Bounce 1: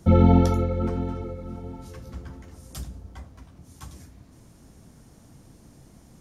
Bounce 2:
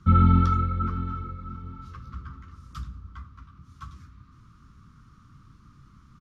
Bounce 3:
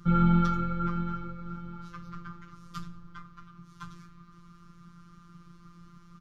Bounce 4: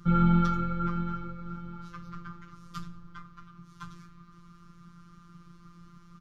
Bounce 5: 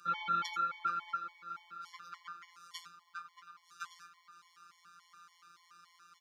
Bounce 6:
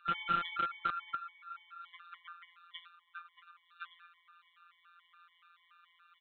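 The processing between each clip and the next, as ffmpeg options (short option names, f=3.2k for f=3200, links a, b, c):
-af "firequalizer=gain_entry='entry(120,0);entry(690,-29);entry(1200,14);entry(1700,-4);entry(3700,-4);entry(9000,-21)':delay=0.05:min_phase=1"
-filter_complex "[0:a]asplit=2[a][b];[b]alimiter=limit=-19.5dB:level=0:latency=1,volume=-2dB[c];[a][c]amix=inputs=2:normalize=0,afftfilt=real='hypot(re,im)*cos(PI*b)':imag='0':win_size=1024:overlap=0.75"
-af anull
-af "highpass=1.4k,afftfilt=real='re*gt(sin(2*PI*3.5*pts/sr)*(1-2*mod(floor(b*sr/1024/580),2)),0)':imag='im*gt(sin(2*PI*3.5*pts/sr)*(1-2*mod(floor(b*sr/1024/580),2)),0)':win_size=1024:overlap=0.75,volume=7dB"
-filter_complex "[0:a]acrossover=split=1200[a][b];[a]acrusher=bits=5:mix=0:aa=0.000001[c];[c][b]amix=inputs=2:normalize=0,aresample=8000,aresample=44100,volume=1.5dB"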